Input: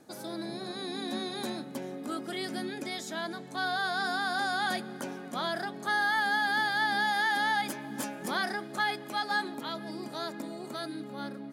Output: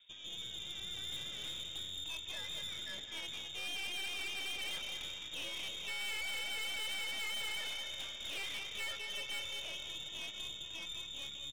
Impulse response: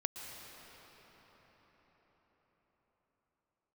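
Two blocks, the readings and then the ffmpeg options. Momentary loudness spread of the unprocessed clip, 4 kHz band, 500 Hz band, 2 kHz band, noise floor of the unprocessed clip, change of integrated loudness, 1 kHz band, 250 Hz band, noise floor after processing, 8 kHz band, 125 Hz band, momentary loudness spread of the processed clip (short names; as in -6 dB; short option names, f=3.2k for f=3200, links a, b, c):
12 LU, -0.5 dB, -17.0 dB, -12.0 dB, -43 dBFS, -8.0 dB, -23.5 dB, -23.0 dB, -48 dBFS, -1.0 dB, -12.0 dB, 5 LU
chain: -filter_complex "[0:a]asplit=2[a][b];[b]adelay=210,lowpass=f=1.3k:p=1,volume=-4dB,asplit=2[c][d];[d]adelay=210,lowpass=f=1.3k:p=1,volume=0.42,asplit=2[e][f];[f]adelay=210,lowpass=f=1.3k:p=1,volume=0.42,asplit=2[g][h];[h]adelay=210,lowpass=f=1.3k:p=1,volume=0.42,asplit=2[i][j];[j]adelay=210,lowpass=f=1.3k:p=1,volume=0.42[k];[a][c][e][g][i][k]amix=inputs=6:normalize=0,lowpass=f=3.3k:t=q:w=0.5098,lowpass=f=3.3k:t=q:w=0.6013,lowpass=f=3.3k:t=q:w=0.9,lowpass=f=3.3k:t=q:w=2.563,afreqshift=-3900,asplit=2[l][m];[1:a]atrim=start_sample=2205,asetrate=66150,aresample=44100,adelay=24[n];[m][n]afir=irnorm=-1:irlink=0,volume=-6dB[o];[l][o]amix=inputs=2:normalize=0,aeval=exprs='(tanh(50.1*val(0)+0.65)-tanh(0.65))/50.1':c=same,volume=-4dB"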